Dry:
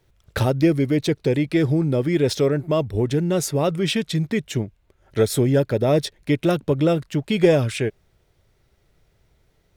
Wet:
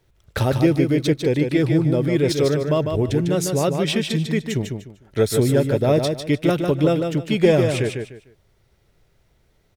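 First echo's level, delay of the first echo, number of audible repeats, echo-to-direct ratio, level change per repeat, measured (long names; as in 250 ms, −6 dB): −5.5 dB, 150 ms, 3, −5.0 dB, −12.0 dB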